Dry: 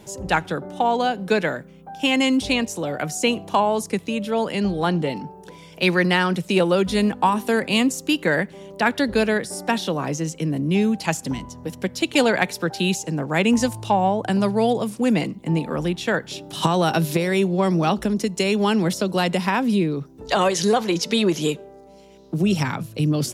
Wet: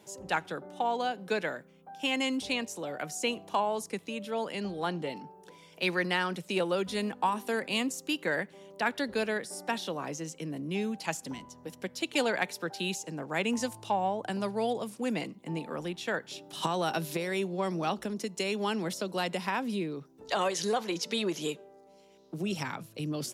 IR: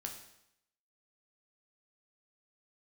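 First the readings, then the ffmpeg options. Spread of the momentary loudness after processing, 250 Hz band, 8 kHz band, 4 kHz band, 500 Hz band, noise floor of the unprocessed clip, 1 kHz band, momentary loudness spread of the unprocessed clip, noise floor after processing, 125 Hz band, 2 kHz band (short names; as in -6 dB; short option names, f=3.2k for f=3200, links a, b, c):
8 LU, -13.5 dB, -9.0 dB, -9.0 dB, -10.5 dB, -45 dBFS, -9.5 dB, 7 LU, -57 dBFS, -15.5 dB, -9.0 dB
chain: -af "highpass=f=310:p=1,volume=-9dB"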